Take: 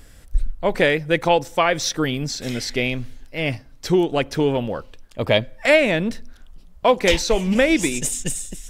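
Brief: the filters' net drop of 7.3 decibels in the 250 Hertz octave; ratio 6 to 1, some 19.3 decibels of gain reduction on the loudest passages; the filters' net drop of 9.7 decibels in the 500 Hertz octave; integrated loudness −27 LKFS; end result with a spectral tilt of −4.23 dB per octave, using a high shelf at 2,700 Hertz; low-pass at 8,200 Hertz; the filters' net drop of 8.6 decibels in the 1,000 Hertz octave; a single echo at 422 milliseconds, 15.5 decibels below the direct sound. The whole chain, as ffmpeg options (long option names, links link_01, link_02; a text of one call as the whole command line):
ffmpeg -i in.wav -af "lowpass=8200,equalizer=frequency=250:width_type=o:gain=-7,equalizer=frequency=500:width_type=o:gain=-8,equalizer=frequency=1000:width_type=o:gain=-6.5,highshelf=frequency=2700:gain=-8,acompressor=threshold=-33dB:ratio=6,aecho=1:1:422:0.168,volume=10.5dB" out.wav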